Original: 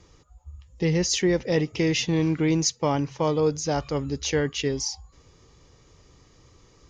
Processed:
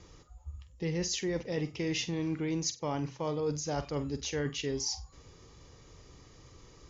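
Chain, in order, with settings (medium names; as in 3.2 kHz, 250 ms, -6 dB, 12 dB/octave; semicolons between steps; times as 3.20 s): reverse; compression 4:1, threshold -32 dBFS, peak gain reduction 12.5 dB; reverse; brick-wall FIR low-pass 7.6 kHz; flutter echo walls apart 8.1 m, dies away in 0.23 s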